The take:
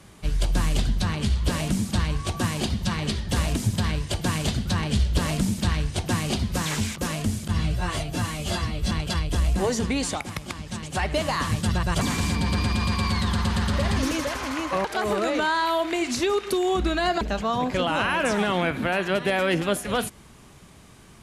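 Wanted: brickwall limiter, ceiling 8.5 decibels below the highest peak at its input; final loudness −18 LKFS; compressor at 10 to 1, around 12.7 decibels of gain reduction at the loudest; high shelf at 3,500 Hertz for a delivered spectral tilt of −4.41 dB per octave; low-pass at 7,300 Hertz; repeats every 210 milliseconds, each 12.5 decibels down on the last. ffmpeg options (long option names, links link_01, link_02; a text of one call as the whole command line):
ffmpeg -i in.wav -af "lowpass=7300,highshelf=frequency=3500:gain=5,acompressor=threshold=-31dB:ratio=10,alimiter=level_in=3.5dB:limit=-24dB:level=0:latency=1,volume=-3.5dB,aecho=1:1:210|420|630:0.237|0.0569|0.0137,volume=19dB" out.wav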